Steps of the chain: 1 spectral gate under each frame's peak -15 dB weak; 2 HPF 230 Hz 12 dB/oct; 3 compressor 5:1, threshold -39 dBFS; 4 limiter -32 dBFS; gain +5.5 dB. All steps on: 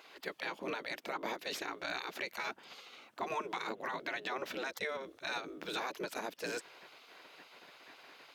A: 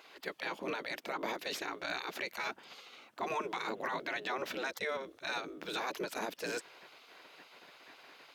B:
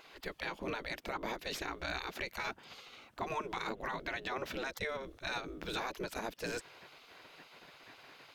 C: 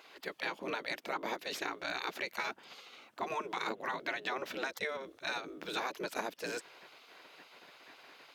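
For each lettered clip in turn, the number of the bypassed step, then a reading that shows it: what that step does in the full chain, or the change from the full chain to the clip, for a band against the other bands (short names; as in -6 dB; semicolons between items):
3, mean gain reduction 2.5 dB; 2, 125 Hz band +8.5 dB; 4, crest factor change +5.5 dB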